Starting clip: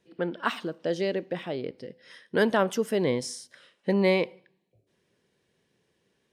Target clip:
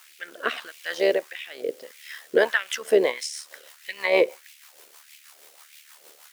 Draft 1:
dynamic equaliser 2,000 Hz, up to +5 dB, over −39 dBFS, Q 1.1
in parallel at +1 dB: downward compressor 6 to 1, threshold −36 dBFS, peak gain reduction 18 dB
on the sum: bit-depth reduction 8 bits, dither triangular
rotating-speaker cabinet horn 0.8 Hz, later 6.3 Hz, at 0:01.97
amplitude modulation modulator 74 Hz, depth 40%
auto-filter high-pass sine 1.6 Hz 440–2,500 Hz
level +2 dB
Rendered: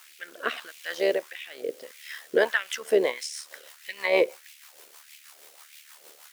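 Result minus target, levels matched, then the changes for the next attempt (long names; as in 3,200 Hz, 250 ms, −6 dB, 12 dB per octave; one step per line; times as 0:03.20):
downward compressor: peak gain reduction +9 dB
change: downward compressor 6 to 1, threshold −25 dBFS, peak gain reduction 8.5 dB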